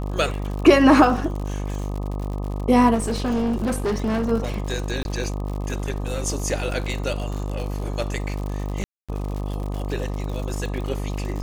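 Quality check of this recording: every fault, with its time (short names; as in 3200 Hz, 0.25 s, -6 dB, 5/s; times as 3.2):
buzz 50 Hz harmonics 25 -27 dBFS
crackle 86/s -29 dBFS
2.94–4.32 clipped -19 dBFS
5.03–5.05 gap 21 ms
8.84–9.09 gap 0.246 s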